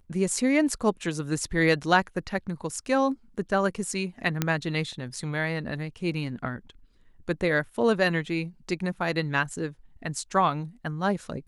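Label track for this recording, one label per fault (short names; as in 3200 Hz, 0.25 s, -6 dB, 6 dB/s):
4.420000	4.420000	pop -9 dBFS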